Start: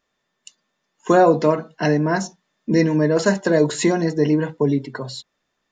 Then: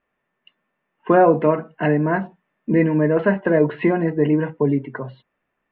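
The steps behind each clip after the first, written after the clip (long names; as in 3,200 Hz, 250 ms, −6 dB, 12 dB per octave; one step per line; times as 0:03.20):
Butterworth low-pass 2,800 Hz 48 dB per octave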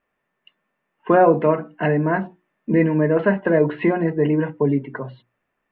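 mains-hum notches 60/120/180/240/300/360 Hz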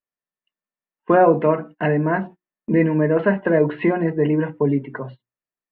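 noise gate −36 dBFS, range −23 dB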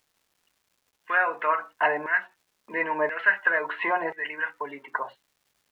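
auto-filter high-pass saw down 0.97 Hz 800–2,000 Hz
surface crackle 530 per second −57 dBFS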